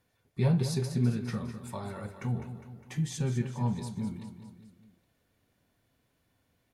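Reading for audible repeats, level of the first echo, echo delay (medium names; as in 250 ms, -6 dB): 4, -10.5 dB, 204 ms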